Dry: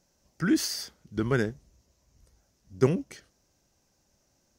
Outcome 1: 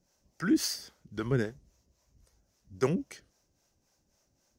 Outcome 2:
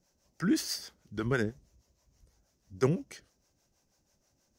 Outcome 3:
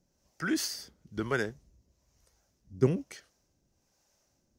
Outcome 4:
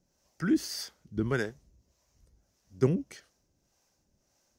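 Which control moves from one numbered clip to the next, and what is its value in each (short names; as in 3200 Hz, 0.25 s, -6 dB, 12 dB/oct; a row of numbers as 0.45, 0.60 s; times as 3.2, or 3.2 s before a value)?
harmonic tremolo, rate: 3.7, 6.2, 1.1, 1.7 Hz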